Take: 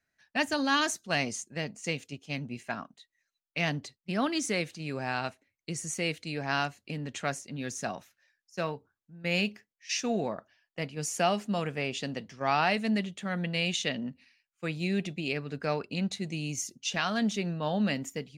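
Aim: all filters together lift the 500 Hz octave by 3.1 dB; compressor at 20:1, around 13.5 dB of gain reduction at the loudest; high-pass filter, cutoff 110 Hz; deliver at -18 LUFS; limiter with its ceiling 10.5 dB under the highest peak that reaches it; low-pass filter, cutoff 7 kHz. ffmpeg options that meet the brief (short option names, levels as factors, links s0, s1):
-af "highpass=110,lowpass=7000,equalizer=f=500:t=o:g=4,acompressor=threshold=0.0224:ratio=20,volume=15.8,alimiter=limit=0.447:level=0:latency=1"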